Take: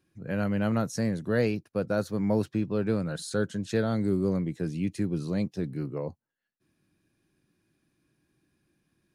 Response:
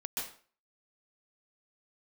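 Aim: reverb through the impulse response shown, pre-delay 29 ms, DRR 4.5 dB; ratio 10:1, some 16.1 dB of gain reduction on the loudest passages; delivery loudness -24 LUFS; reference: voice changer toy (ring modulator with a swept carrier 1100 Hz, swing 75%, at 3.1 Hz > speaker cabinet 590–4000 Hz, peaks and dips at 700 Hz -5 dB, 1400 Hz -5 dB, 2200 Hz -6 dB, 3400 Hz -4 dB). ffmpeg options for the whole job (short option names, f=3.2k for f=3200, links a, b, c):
-filter_complex "[0:a]acompressor=threshold=-38dB:ratio=10,asplit=2[a][b];[1:a]atrim=start_sample=2205,adelay=29[c];[b][c]afir=irnorm=-1:irlink=0,volume=-6.5dB[d];[a][d]amix=inputs=2:normalize=0,aeval=exprs='val(0)*sin(2*PI*1100*n/s+1100*0.75/3.1*sin(2*PI*3.1*n/s))':c=same,highpass=590,equalizer=f=700:t=q:w=4:g=-5,equalizer=f=1.4k:t=q:w=4:g=-5,equalizer=f=2.2k:t=q:w=4:g=-6,equalizer=f=3.4k:t=q:w=4:g=-4,lowpass=f=4k:w=0.5412,lowpass=f=4k:w=1.3066,volume=23.5dB"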